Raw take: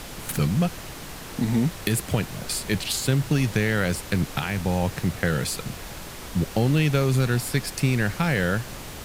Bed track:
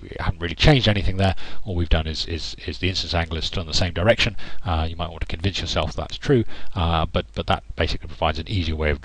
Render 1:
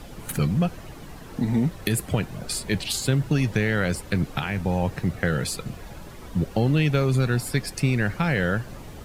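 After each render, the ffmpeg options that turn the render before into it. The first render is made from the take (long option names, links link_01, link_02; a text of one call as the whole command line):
ffmpeg -i in.wav -af "afftdn=noise_reduction=11:noise_floor=-38" out.wav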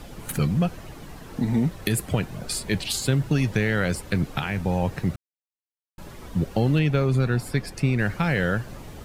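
ffmpeg -i in.wav -filter_complex "[0:a]asettb=1/sr,asplit=3[link_01][link_02][link_03];[link_01]atrim=end=6.794[link_04];[link_02]atrim=start=6.79:end=7.99,asetpts=PTS-STARTPTS,afade=type=in:duration=0.004:curve=qsin,afade=type=out:start_time=1.196:duration=0.004:curve=qsin,highshelf=frequency=3400:gain=-7.5[link_05];[link_03]atrim=start=7.986[link_06];[link_04][link_05]acrossfade=duration=0.004:curve1=hsin:curve2=qsin[link_07];[link_07][link_06]acrossfade=duration=0.004:curve1=qsin:curve2=hsin,asplit=3[link_08][link_09][link_10];[link_08]atrim=end=5.16,asetpts=PTS-STARTPTS,afade=type=out:start_time=5.156:duration=0.004:curve=hsin[link_11];[link_09]atrim=start=5.16:end=5.98,asetpts=PTS-STARTPTS,volume=0[link_12];[link_10]atrim=start=5.98,asetpts=PTS-STARTPTS,afade=type=in:duration=0.004:curve=hsin[link_13];[link_11][link_12][link_13]concat=n=3:v=0:a=1" out.wav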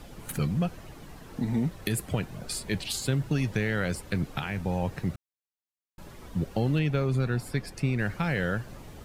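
ffmpeg -i in.wav -af "volume=-5dB" out.wav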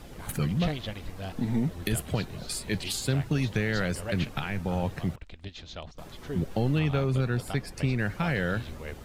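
ffmpeg -i in.wav -i bed.wav -filter_complex "[1:a]volume=-18.5dB[link_01];[0:a][link_01]amix=inputs=2:normalize=0" out.wav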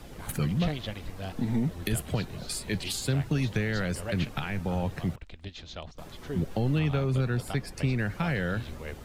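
ffmpeg -i in.wav -filter_complex "[0:a]acrossover=split=220[link_01][link_02];[link_02]acompressor=threshold=-29dB:ratio=2[link_03];[link_01][link_03]amix=inputs=2:normalize=0" out.wav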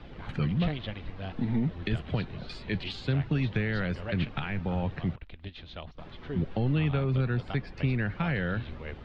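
ffmpeg -i in.wav -af "lowpass=frequency=3700:width=0.5412,lowpass=frequency=3700:width=1.3066,equalizer=frequency=580:width_type=o:width=1.5:gain=-2" out.wav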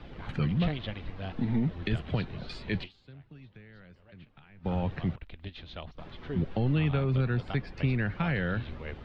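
ffmpeg -i in.wav -filter_complex "[0:a]asplit=3[link_01][link_02][link_03];[link_01]atrim=end=3,asetpts=PTS-STARTPTS,afade=type=out:start_time=2.84:duration=0.16:curve=exp:silence=0.0749894[link_04];[link_02]atrim=start=3:end=4.5,asetpts=PTS-STARTPTS,volume=-22.5dB[link_05];[link_03]atrim=start=4.5,asetpts=PTS-STARTPTS,afade=type=in:duration=0.16:curve=exp:silence=0.0749894[link_06];[link_04][link_05][link_06]concat=n=3:v=0:a=1" out.wav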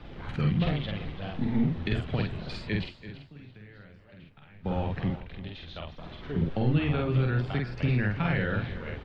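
ffmpeg -i in.wav -filter_complex "[0:a]asplit=2[link_01][link_02];[link_02]adelay=48,volume=-2.5dB[link_03];[link_01][link_03]amix=inputs=2:normalize=0,aecho=1:1:336|672|1008:0.211|0.0486|0.0112" out.wav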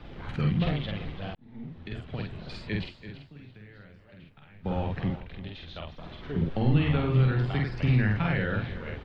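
ffmpeg -i in.wav -filter_complex "[0:a]asettb=1/sr,asplit=3[link_01][link_02][link_03];[link_01]atrim=end=6.514[link_04];[link_02]atrim=start=6.51:end=8.25,asetpts=PTS-STARTPTS,afade=type=in:duration=0.004:curve=qsin,afade=type=out:start_time=1.736:duration=0.004:curve=qsin,asplit=2[link_05][link_06];[link_06]adelay=47,volume=-3.5dB[link_07];[link_05][link_07]amix=inputs=2:normalize=0,atrim=end_sample=76734[link_08];[link_03]atrim=start=8.246[link_09];[link_04][link_08]acrossfade=duration=0.004:curve1=hsin:curve2=qsin[link_10];[link_10][link_09]acrossfade=duration=0.004:curve1=qsin:curve2=hsin,asplit=2[link_11][link_12];[link_11]atrim=end=1.35,asetpts=PTS-STARTPTS,afade=type=out:start_time=1.346:duration=0.004:curve=hsin[link_13];[link_12]atrim=start=1.35,asetpts=PTS-STARTPTS,afade=type=in:duration=1.64[link_14];[link_13][link_14]concat=n=2:v=0:a=1" out.wav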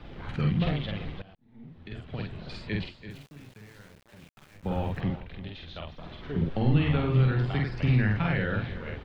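ffmpeg -i in.wav -filter_complex "[0:a]asplit=3[link_01][link_02][link_03];[link_01]afade=type=out:start_time=3.09:duration=0.02[link_04];[link_02]aeval=exprs='val(0)*gte(abs(val(0)),0.00299)':channel_layout=same,afade=type=in:start_time=3.09:duration=0.02,afade=type=out:start_time=4.99:duration=0.02[link_05];[link_03]afade=type=in:start_time=4.99:duration=0.02[link_06];[link_04][link_05][link_06]amix=inputs=3:normalize=0,asplit=2[link_07][link_08];[link_07]atrim=end=1.22,asetpts=PTS-STARTPTS,afade=type=out:start_time=1.216:duration=0.004:curve=hsin:silence=0.1[link_09];[link_08]atrim=start=1.22,asetpts=PTS-STARTPTS,afade=type=in:duration=1.03:silence=0.1[link_10];[link_09][link_10]concat=n=2:v=0:a=1" out.wav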